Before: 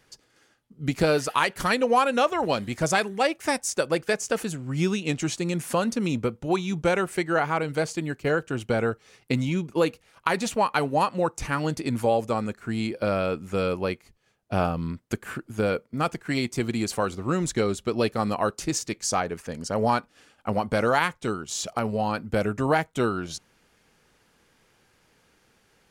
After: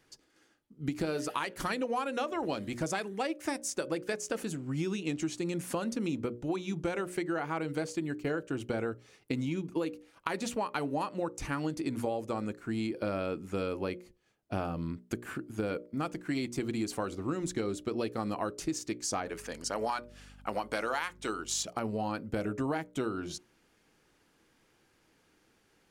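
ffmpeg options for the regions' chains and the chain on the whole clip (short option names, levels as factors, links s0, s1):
-filter_complex "[0:a]asettb=1/sr,asplit=3[s0][s1][s2];[s0]atrim=end=19.264[s3];[s1]atrim=start=19.26:end=21.63,asetpts=PTS-STARTPTS,afade=t=in:d=0.004:c=qsin,afade=t=out:st=2.366:d=0.004:c=qsin,highpass=f=1000:p=1,acontrast=65,aeval=exprs='val(0)+0.00447*(sin(2*PI*50*n/s)+sin(2*PI*2*50*n/s)/2+sin(2*PI*3*50*n/s)/3+sin(2*PI*4*50*n/s)/4+sin(2*PI*5*50*n/s)/5)':c=same[s4];[s2]atrim=start=21.626[s5];[s3][s4]acrossfade=d=0.004:c1=hsin:c2=qsin[s6];[s6][s5]acrossfade=d=0.004:c1=qsin:c2=hsin,equalizer=f=310:t=o:w=0.52:g=8,bandreject=f=60:t=h:w=6,bandreject=f=120:t=h:w=6,bandreject=f=180:t=h:w=6,bandreject=f=240:t=h:w=6,bandreject=f=300:t=h:w=6,bandreject=f=360:t=h:w=6,bandreject=f=420:t=h:w=6,bandreject=f=480:t=h:w=6,bandreject=f=540:t=h:w=6,bandreject=f=600:t=h:w=6,acompressor=threshold=0.0708:ratio=6,volume=0.501"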